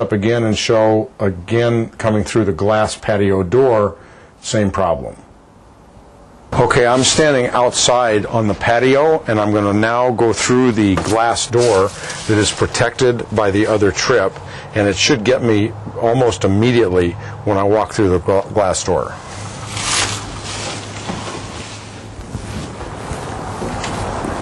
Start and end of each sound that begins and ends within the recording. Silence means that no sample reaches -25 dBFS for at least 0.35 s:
4.45–5.13 s

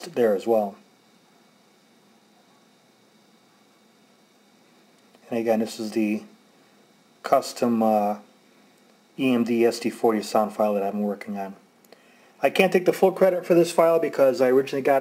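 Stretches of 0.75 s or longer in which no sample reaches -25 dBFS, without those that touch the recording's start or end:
0.69–5.32 s
6.17–7.25 s
8.13–9.19 s
11.45–12.43 s

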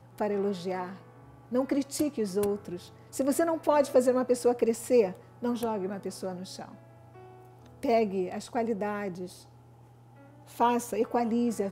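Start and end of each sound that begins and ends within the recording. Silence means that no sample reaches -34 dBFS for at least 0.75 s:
7.83–9.26 s

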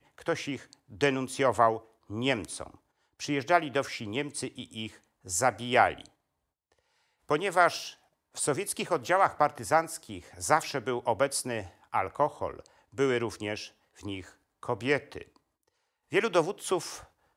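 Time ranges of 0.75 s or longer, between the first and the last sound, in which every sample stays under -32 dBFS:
6.01–7.31 s
15.21–16.13 s

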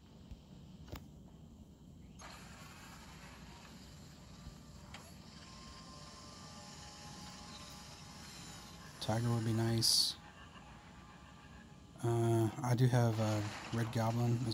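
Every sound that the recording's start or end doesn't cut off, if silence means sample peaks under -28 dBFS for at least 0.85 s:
9.09–10.09 s

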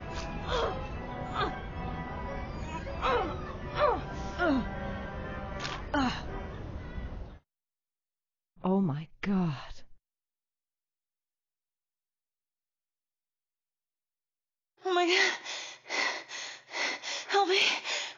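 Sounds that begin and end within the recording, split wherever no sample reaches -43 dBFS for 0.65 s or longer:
8.64–9.84 s

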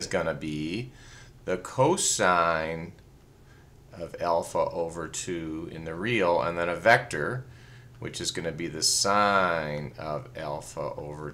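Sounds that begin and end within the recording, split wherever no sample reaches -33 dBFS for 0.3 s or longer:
1.47–2.85 s
3.99–7.40 s

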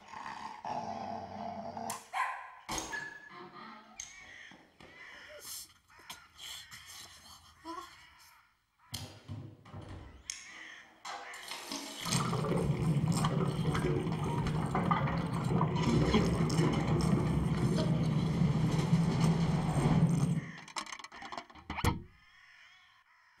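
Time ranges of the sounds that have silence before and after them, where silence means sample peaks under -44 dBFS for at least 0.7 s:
8.93–22.03 s

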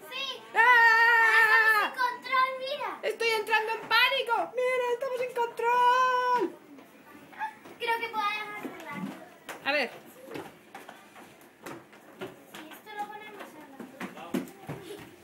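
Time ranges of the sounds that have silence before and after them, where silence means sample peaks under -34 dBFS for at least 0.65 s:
7.40–10.89 s

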